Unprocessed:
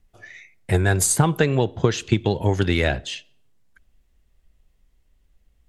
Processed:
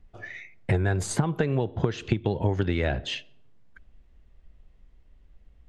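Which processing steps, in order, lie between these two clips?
head-to-tape spacing loss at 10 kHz 21 dB
downward compressor 12 to 1, threshold −27 dBFS, peak gain reduction 15.5 dB
level +6.5 dB

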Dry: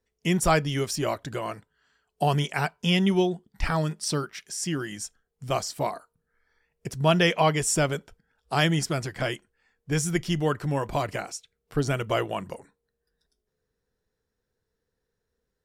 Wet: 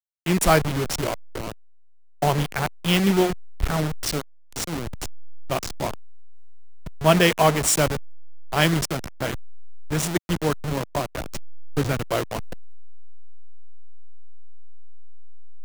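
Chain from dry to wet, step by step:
hold until the input has moved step −23 dBFS
multiband upward and downward expander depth 40%
level +2.5 dB

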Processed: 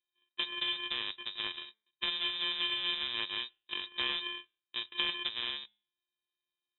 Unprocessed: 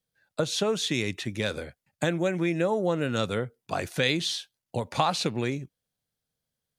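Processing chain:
samples sorted by size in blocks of 64 samples
tuned comb filter 57 Hz, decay 0.43 s, harmonics odd, mix 30%
voice inversion scrambler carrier 3,800 Hz
level −5.5 dB

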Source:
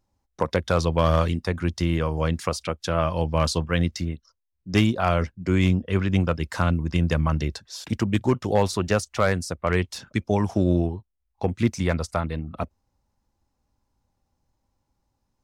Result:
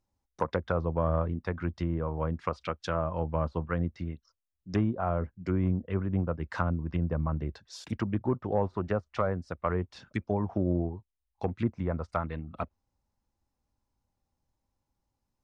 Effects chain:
treble cut that deepens with the level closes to 780 Hz, closed at −18.5 dBFS
dynamic equaliser 1,300 Hz, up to +6 dB, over −40 dBFS, Q 0.92
level −7.5 dB

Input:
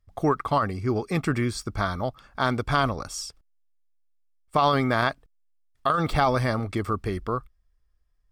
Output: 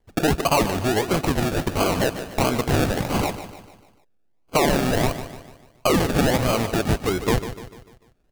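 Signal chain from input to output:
downward compressor, threshold −28 dBFS, peak gain reduction 11.5 dB
mid-hump overdrive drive 18 dB, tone 5,900 Hz, clips at −14.5 dBFS
sample-and-hold swept by an LFO 34×, swing 60% 1.5 Hz
on a send: repeating echo 148 ms, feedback 47%, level −11.5 dB
on the sum: level +6 dB

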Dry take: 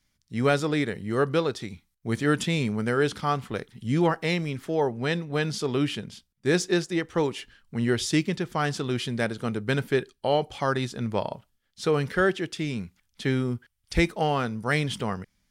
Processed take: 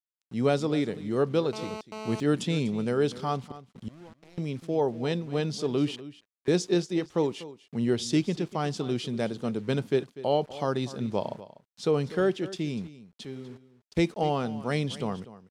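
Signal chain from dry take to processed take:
high-pass filter 130 Hz 12 dB per octave
parametric band 1,700 Hz −11 dB 1.2 octaves
0:03.40–0:04.38: gate with flip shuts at −25 dBFS, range −25 dB
0:05.96–0:06.48: envelope filter 700–1,800 Hz, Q 2.8, up, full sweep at −35.5 dBFS
0:13.25–0:13.97: tuned comb filter 200 Hz, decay 1.7 s, mix 80%
centre clipping without the shift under −49.5 dBFS
high-frequency loss of the air 51 metres
single-tap delay 245 ms −16.5 dB
0:01.53–0:02.20: phone interference −38 dBFS

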